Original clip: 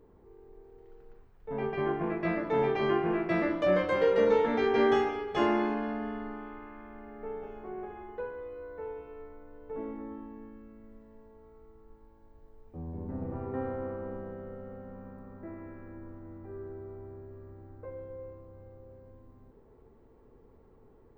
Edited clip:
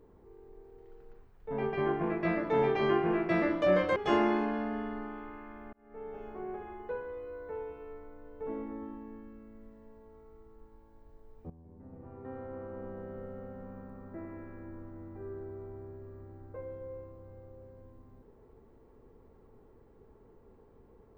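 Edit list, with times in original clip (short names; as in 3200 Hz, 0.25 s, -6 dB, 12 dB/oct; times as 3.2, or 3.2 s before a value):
3.96–5.25 cut
7.02–7.54 fade in
12.79–14.48 fade in quadratic, from -16 dB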